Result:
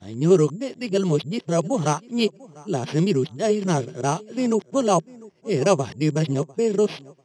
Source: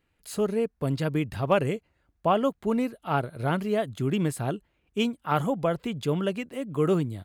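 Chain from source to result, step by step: reverse the whole clip; tape echo 696 ms, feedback 25%, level -20.5 dB, low-pass 1.6 kHz; careless resampling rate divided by 6×, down none, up hold; cabinet simulation 150–7800 Hz, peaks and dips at 160 Hz +7 dB, 380 Hz +7 dB, 1.4 kHz -6 dB, 3.2 kHz +4 dB, 5.6 kHz +5 dB; trim +3 dB

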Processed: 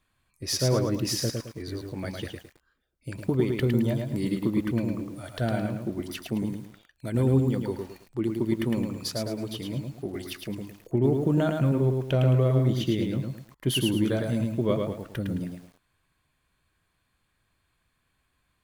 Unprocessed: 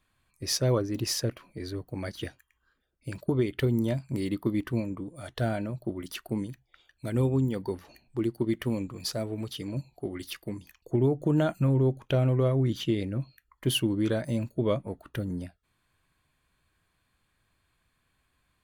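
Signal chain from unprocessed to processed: dynamic bell 190 Hz, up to +4 dB, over -39 dBFS, Q 2.5; bit-crushed delay 108 ms, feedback 35%, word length 9-bit, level -4 dB

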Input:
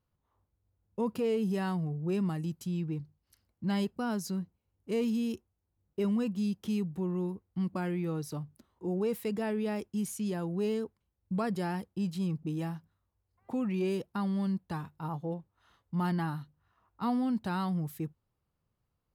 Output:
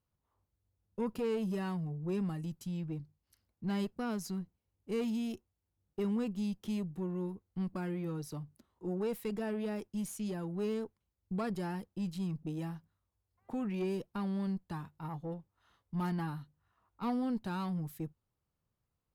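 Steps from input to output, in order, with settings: Chebyshev shaper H 4 -20 dB, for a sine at -21.5 dBFS; trim -4 dB

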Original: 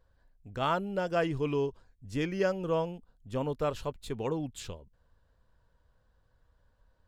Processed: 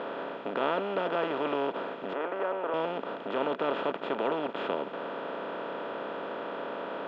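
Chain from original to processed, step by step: spectral levelling over time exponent 0.2; elliptic band-pass 210–3400 Hz, stop band 60 dB; 2.13–2.74 s: three-band isolator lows -15 dB, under 340 Hz, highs -15 dB, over 2.2 kHz; trim -6 dB

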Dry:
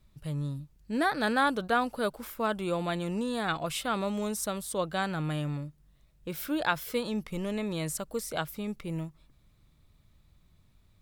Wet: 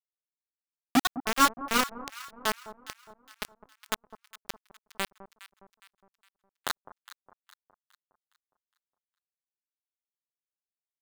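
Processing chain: steep low-pass 1.4 kHz 48 dB/octave; FFT band-reject 280–860 Hz; high-pass 220 Hz 24 dB/octave; rotary cabinet horn 7.5 Hz; bit crusher 5-bit; on a send: echo whose repeats swap between lows and highs 206 ms, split 1.1 kHz, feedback 63%, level -13 dB; on the sum: trim +9 dB

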